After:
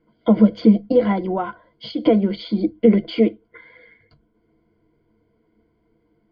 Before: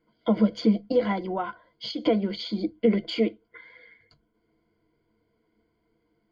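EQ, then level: air absorption 250 m; tilt shelf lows +3.5 dB, about 820 Hz; high shelf 3300 Hz +7.5 dB; +5.5 dB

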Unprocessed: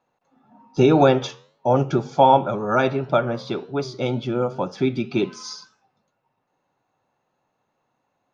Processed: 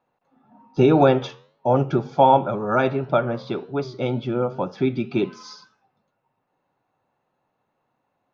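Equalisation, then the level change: air absorption 150 m; 0.0 dB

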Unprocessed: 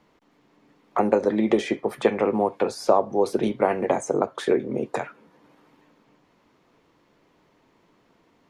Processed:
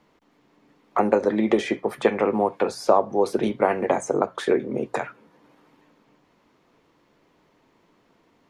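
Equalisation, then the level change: notches 60/120/180 Hz; dynamic EQ 1500 Hz, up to +3 dB, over -35 dBFS, Q 0.89; 0.0 dB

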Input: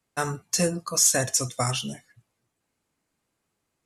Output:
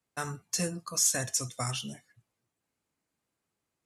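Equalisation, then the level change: dynamic EQ 520 Hz, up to -5 dB, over -38 dBFS, Q 0.87; HPF 42 Hz; -6.0 dB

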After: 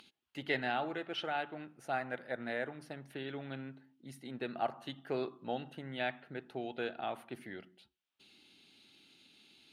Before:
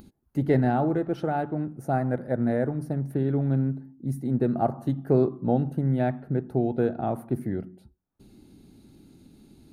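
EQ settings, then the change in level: band-pass 3000 Hz, Q 3; +12.5 dB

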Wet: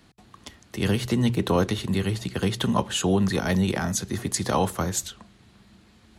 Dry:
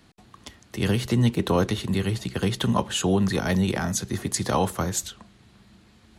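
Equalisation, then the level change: notches 60/120 Hz; 0.0 dB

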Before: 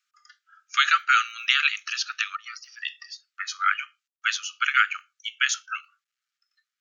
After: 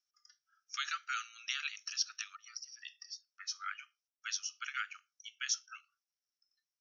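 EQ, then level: band-pass 5600 Hz, Q 12; tilt -6 dB/oct; +17.5 dB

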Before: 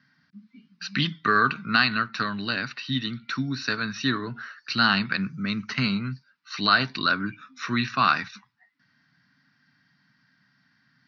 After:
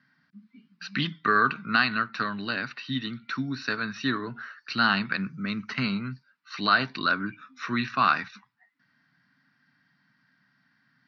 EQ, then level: low shelf 120 Hz -10 dB; high shelf 4400 Hz -11.5 dB; 0.0 dB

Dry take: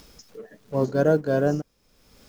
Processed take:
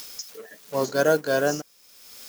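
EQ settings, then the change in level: tilt +3.5 dB/oct; low shelf 420 Hz -5 dB; +5.0 dB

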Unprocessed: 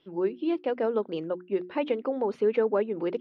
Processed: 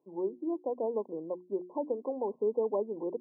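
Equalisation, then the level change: Bessel high-pass 250 Hz; brick-wall FIR low-pass 1100 Hz; -4.5 dB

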